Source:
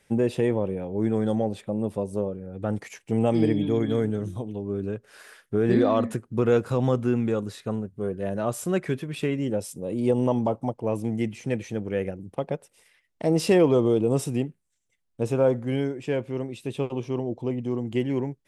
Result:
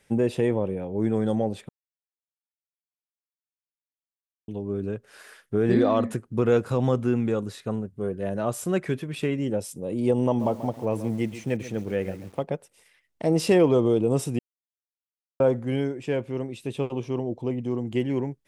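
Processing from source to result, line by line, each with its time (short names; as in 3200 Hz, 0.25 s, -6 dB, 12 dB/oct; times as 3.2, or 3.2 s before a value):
1.69–4.48 mute
10.26–12.44 lo-fi delay 0.136 s, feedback 35%, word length 7-bit, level -13 dB
14.39–15.4 mute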